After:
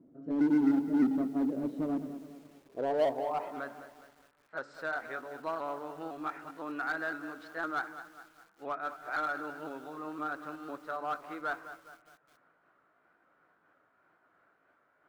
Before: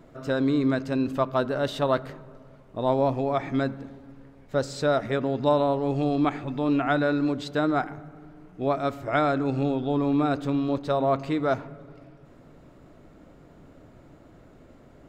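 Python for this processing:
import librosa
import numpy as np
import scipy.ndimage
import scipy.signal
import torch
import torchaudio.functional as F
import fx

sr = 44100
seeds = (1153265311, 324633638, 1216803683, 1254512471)

p1 = fx.pitch_ramps(x, sr, semitones=2.0, every_ms=509)
p2 = fx.dynamic_eq(p1, sr, hz=300.0, q=0.73, threshold_db=-39.0, ratio=4.0, max_db=7)
p3 = fx.filter_sweep_bandpass(p2, sr, from_hz=260.0, to_hz=1400.0, start_s=2.34, end_s=3.7, q=3.0)
p4 = 10.0 ** (-27.0 / 20.0) * (np.abs((p3 / 10.0 ** (-27.0 / 20.0) + 3.0) % 4.0 - 2.0) - 1.0)
p5 = p3 + (p4 * 10.0 ** (-7.0 / 20.0))
p6 = fx.echo_crushed(p5, sr, ms=207, feedback_pct=55, bits=8, wet_db=-12.0)
y = p6 * 10.0 ** (-5.0 / 20.0)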